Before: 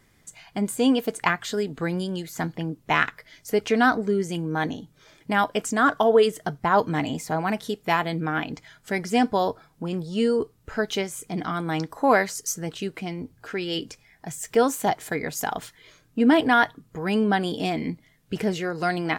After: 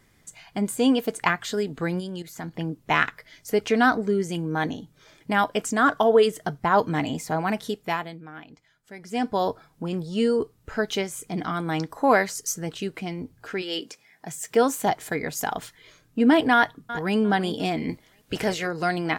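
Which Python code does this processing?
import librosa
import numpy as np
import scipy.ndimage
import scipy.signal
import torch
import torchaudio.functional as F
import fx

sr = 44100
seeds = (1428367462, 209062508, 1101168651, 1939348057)

y = fx.level_steps(x, sr, step_db=11, at=(1.99, 2.53), fade=0.02)
y = fx.highpass(y, sr, hz=fx.line((13.61, 400.0), (14.67, 100.0)), slope=12, at=(13.61, 14.67), fade=0.02)
y = fx.echo_throw(y, sr, start_s=16.54, length_s=0.62, ms=350, feedback_pct=25, wet_db=-13.5)
y = fx.spec_clip(y, sr, under_db=14, at=(17.88, 18.66), fade=0.02)
y = fx.edit(y, sr, fx.fade_down_up(start_s=7.69, length_s=1.79, db=-15.5, fade_s=0.5), tone=tone)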